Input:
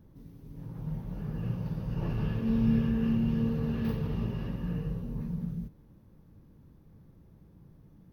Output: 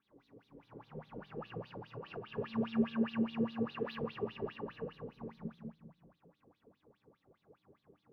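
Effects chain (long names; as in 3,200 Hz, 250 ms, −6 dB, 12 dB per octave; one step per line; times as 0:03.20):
convolution reverb RT60 0.85 s, pre-delay 4 ms, DRR −8 dB
LFO wah 4.9 Hz 420–4,000 Hz, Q 8.9
0:01.74–0:02.38: downward compressor 5 to 1, threshold −46 dBFS, peak gain reduction 10 dB
level +3.5 dB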